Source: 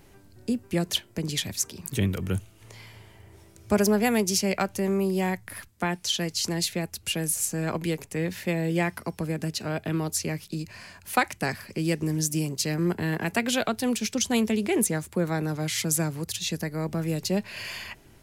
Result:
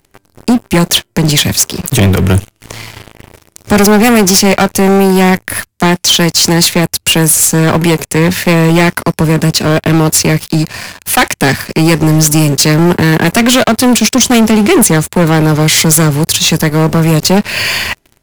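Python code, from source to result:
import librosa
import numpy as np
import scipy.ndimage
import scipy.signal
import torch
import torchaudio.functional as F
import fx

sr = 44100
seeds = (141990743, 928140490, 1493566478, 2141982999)

y = fx.leveller(x, sr, passes=5)
y = F.gain(torch.from_numpy(y), 5.0).numpy()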